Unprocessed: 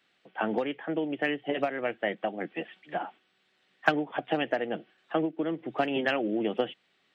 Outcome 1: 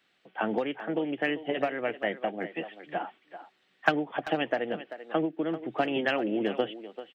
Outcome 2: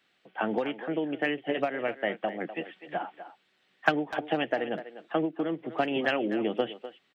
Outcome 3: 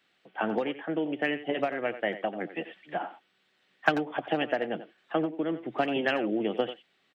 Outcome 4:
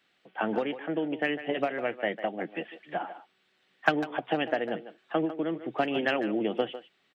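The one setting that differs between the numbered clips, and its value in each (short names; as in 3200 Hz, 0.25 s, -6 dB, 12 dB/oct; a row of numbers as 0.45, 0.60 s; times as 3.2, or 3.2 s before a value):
speakerphone echo, time: 390, 250, 90, 150 ms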